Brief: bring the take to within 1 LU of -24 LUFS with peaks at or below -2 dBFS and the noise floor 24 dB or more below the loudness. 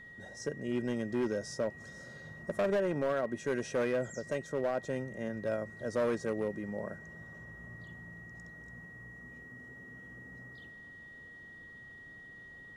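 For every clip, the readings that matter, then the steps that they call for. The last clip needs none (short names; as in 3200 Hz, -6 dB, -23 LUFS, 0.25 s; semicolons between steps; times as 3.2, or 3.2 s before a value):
clipped 1.4%; flat tops at -26.0 dBFS; steady tone 1900 Hz; tone level -49 dBFS; loudness -35.0 LUFS; peak -26.0 dBFS; loudness target -24.0 LUFS
-> clip repair -26 dBFS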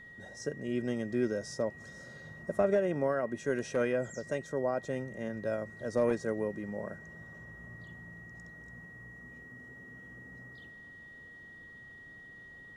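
clipped 0.0%; steady tone 1900 Hz; tone level -49 dBFS
-> notch 1900 Hz, Q 30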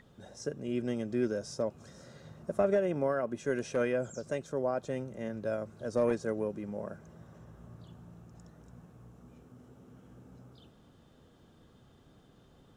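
steady tone none; loudness -34.0 LUFS; peak -17.0 dBFS; loudness target -24.0 LUFS
-> gain +10 dB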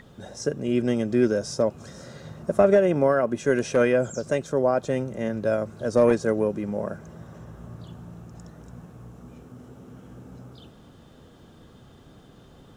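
loudness -24.0 LUFS; peak -7.0 dBFS; noise floor -51 dBFS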